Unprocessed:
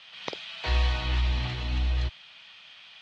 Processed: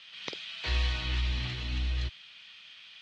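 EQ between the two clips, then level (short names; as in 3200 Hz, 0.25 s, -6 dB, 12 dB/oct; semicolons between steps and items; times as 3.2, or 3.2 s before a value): low shelf 200 Hz -5 dB; bell 760 Hz -10.5 dB 1.4 oct; 0.0 dB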